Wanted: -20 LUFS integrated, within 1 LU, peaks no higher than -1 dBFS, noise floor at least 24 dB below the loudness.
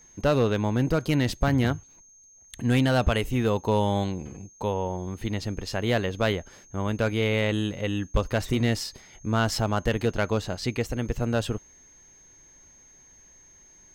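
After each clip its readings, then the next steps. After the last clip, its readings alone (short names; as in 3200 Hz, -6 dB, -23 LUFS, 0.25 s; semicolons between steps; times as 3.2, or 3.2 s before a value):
clipped 0.2%; flat tops at -13.5 dBFS; steady tone 6400 Hz; tone level -52 dBFS; loudness -26.5 LUFS; peak -13.5 dBFS; loudness target -20.0 LUFS
-> clip repair -13.5 dBFS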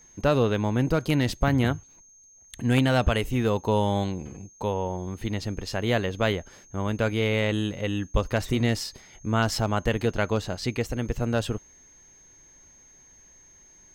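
clipped 0.0%; steady tone 6400 Hz; tone level -52 dBFS
-> notch 6400 Hz, Q 30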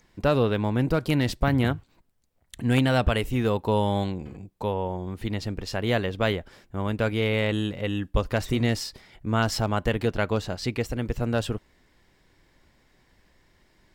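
steady tone none; loudness -26.5 LUFS; peak -5.5 dBFS; loudness target -20.0 LUFS
-> gain +6.5 dB; limiter -1 dBFS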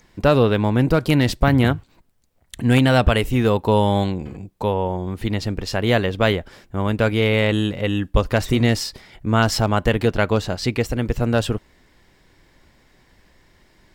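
loudness -20.0 LUFS; peak -1.0 dBFS; noise floor -58 dBFS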